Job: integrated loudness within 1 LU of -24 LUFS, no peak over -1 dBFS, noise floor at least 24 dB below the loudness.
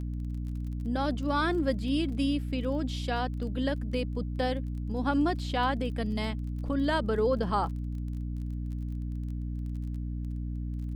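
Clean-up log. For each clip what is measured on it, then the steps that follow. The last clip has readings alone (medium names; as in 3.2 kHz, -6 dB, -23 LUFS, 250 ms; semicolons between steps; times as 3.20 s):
tick rate 23 per s; hum 60 Hz; highest harmonic 300 Hz; hum level -31 dBFS; loudness -31.5 LUFS; peak level -15.0 dBFS; loudness target -24.0 LUFS
-> de-click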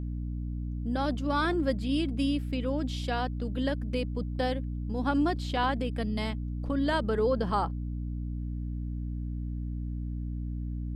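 tick rate 0.091 per s; hum 60 Hz; highest harmonic 300 Hz; hum level -31 dBFS
-> de-hum 60 Hz, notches 5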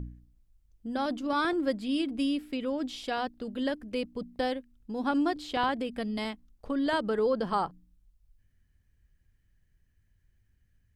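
hum not found; loudness -31.5 LUFS; peak level -16.5 dBFS; loudness target -24.0 LUFS
-> trim +7.5 dB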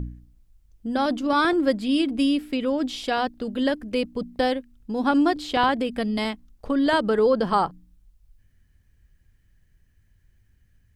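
loudness -24.0 LUFS; peak level -9.0 dBFS; noise floor -63 dBFS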